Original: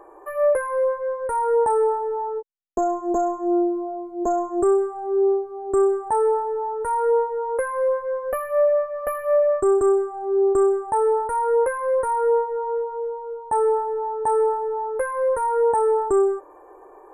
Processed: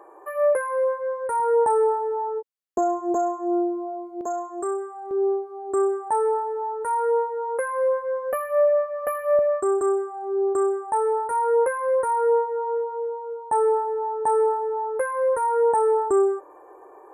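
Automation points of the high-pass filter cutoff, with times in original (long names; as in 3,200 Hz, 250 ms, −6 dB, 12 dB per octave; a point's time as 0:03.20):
high-pass filter 6 dB per octave
330 Hz
from 0:01.40 140 Hz
from 0:03.14 350 Hz
from 0:04.21 1,100 Hz
from 0:05.11 440 Hz
from 0:07.69 210 Hz
from 0:09.39 500 Hz
from 0:11.31 190 Hz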